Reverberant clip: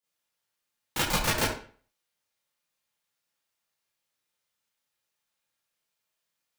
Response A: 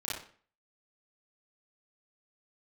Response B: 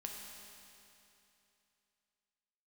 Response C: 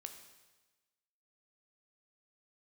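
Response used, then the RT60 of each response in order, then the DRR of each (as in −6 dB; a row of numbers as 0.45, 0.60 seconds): A; 0.45, 2.9, 1.2 seconds; −10.0, 0.0, 6.0 decibels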